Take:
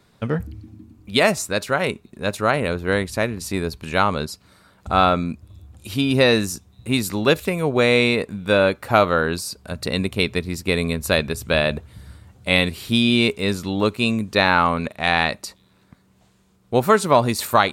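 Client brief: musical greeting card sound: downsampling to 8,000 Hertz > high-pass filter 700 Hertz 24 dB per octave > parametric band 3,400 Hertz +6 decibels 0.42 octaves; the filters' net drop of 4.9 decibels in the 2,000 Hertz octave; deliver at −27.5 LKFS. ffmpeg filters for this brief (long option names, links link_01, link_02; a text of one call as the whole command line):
ffmpeg -i in.wav -af "equalizer=frequency=2000:width_type=o:gain=-7.5,aresample=8000,aresample=44100,highpass=frequency=700:width=0.5412,highpass=frequency=700:width=1.3066,equalizer=frequency=3400:width_type=o:width=0.42:gain=6,volume=-2.5dB" out.wav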